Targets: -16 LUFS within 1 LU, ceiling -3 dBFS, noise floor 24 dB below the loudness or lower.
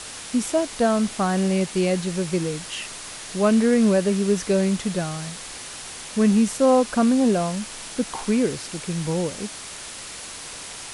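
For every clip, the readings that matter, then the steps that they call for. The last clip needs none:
noise floor -37 dBFS; noise floor target -47 dBFS; loudness -22.5 LUFS; peak level -7.0 dBFS; loudness target -16.0 LUFS
-> noise reduction 10 dB, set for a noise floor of -37 dBFS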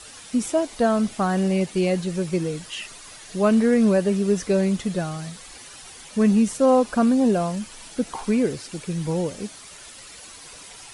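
noise floor -43 dBFS; noise floor target -47 dBFS
-> noise reduction 6 dB, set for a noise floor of -43 dBFS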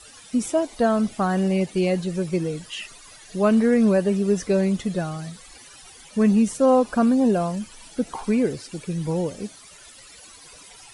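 noise floor -47 dBFS; loudness -22.0 LUFS; peak level -7.5 dBFS; loudness target -16.0 LUFS
-> trim +6 dB; peak limiter -3 dBFS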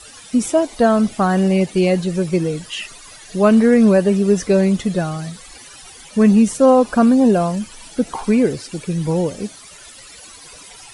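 loudness -16.0 LUFS; peak level -3.0 dBFS; noise floor -41 dBFS

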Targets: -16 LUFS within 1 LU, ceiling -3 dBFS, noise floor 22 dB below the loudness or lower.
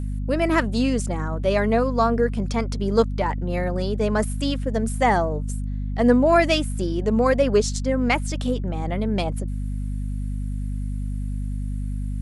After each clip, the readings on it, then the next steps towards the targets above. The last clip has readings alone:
hum 50 Hz; highest harmonic 250 Hz; hum level -24 dBFS; loudness -23.0 LUFS; peak level -5.0 dBFS; loudness target -16.0 LUFS
-> hum notches 50/100/150/200/250 Hz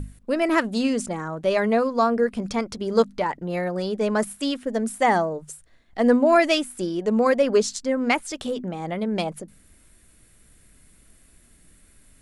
hum not found; loudness -23.0 LUFS; peak level -6.0 dBFS; loudness target -16.0 LUFS
-> trim +7 dB; peak limiter -3 dBFS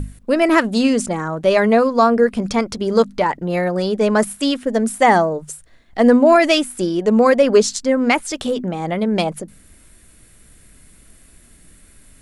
loudness -16.5 LUFS; peak level -3.0 dBFS; noise floor -49 dBFS

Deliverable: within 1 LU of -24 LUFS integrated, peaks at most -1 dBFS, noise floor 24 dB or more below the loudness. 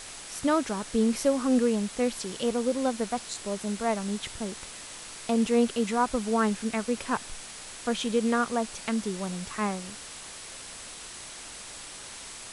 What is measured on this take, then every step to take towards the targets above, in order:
steady tone 7.9 kHz; tone level -53 dBFS; noise floor -43 dBFS; noise floor target -53 dBFS; loudness -28.5 LUFS; peak level -12.5 dBFS; loudness target -24.0 LUFS
-> band-stop 7.9 kHz, Q 30; noise print and reduce 10 dB; trim +4.5 dB

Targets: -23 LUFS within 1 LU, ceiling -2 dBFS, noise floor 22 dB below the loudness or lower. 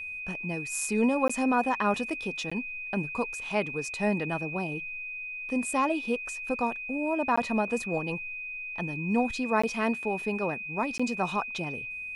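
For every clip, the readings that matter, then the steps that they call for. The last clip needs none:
dropouts 5; longest dropout 15 ms; steady tone 2.5 kHz; tone level -35 dBFS; loudness -29.5 LUFS; peak level -12.0 dBFS; loudness target -23.0 LUFS
-> interpolate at 1.28/2.50/7.36/9.62/10.98 s, 15 ms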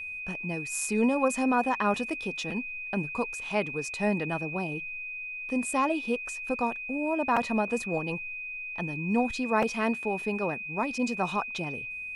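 dropouts 0; steady tone 2.5 kHz; tone level -35 dBFS
-> band-stop 2.5 kHz, Q 30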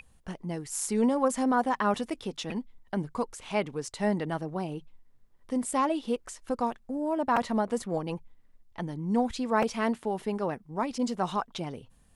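steady tone not found; loudness -30.5 LUFS; peak level -11.5 dBFS; loudness target -23.0 LUFS
-> trim +7.5 dB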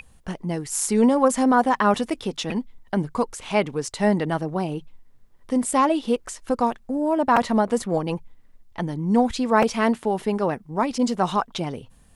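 loudness -23.0 LUFS; peak level -4.0 dBFS; noise floor -53 dBFS

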